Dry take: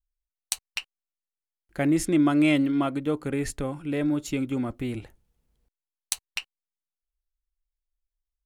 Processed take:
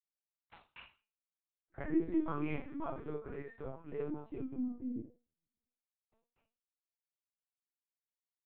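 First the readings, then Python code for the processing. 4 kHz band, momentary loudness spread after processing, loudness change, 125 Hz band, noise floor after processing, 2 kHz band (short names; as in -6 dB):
under -25 dB, 20 LU, -13.0 dB, -15.5 dB, under -85 dBFS, -17.5 dB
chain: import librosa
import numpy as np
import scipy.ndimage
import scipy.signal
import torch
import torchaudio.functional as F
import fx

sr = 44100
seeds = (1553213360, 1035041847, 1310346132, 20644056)

p1 = scipy.signal.sosfilt(scipy.signal.butter(4, 160.0, 'highpass', fs=sr, output='sos'), x)
p2 = fx.resonator_bank(p1, sr, root=52, chord='sus4', decay_s=0.34)
p3 = fx.filter_sweep_lowpass(p2, sr, from_hz=1400.0, to_hz=250.0, start_s=3.99, end_s=5.34, q=0.95)
p4 = p3 + fx.room_early_taps(p3, sr, ms=(27, 43, 53), db=(-8.0, -14.5, -6.5), dry=0)
p5 = fx.lpc_vocoder(p4, sr, seeds[0], excitation='pitch_kept', order=10)
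y = F.gain(torch.from_numpy(p5), 5.0).numpy()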